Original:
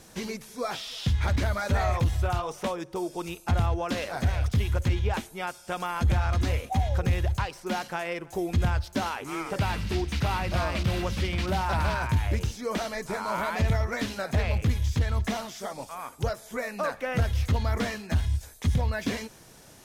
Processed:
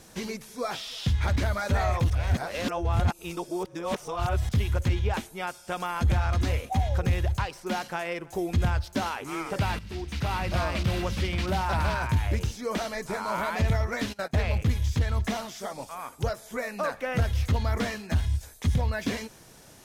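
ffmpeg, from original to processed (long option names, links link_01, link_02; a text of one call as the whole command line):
ffmpeg -i in.wav -filter_complex "[0:a]asplit=3[link_01][link_02][link_03];[link_01]afade=type=out:start_time=14.12:duration=0.02[link_04];[link_02]agate=range=-20dB:threshold=-35dB:ratio=16:release=100:detection=peak,afade=type=in:start_time=14.12:duration=0.02,afade=type=out:start_time=14.78:duration=0.02[link_05];[link_03]afade=type=in:start_time=14.78:duration=0.02[link_06];[link_04][link_05][link_06]amix=inputs=3:normalize=0,asplit=4[link_07][link_08][link_09][link_10];[link_07]atrim=end=2.102[link_11];[link_08]atrim=start=2.098:end=4.492,asetpts=PTS-STARTPTS,areverse[link_12];[link_09]atrim=start=4.488:end=9.79,asetpts=PTS-STARTPTS,afade=type=out:start_time=5.298:duration=0.004:curve=hsin:silence=0.223872[link_13];[link_10]atrim=start=9.79,asetpts=PTS-STARTPTS,afade=type=in:duration=0.65:silence=0.223872[link_14];[link_11][link_12]acrossfade=duration=0.004:curve1=hsin:curve2=hsin[link_15];[link_13][link_14]concat=n=2:v=0:a=1[link_16];[link_15][link_16]acrossfade=duration=0.004:curve1=hsin:curve2=hsin" out.wav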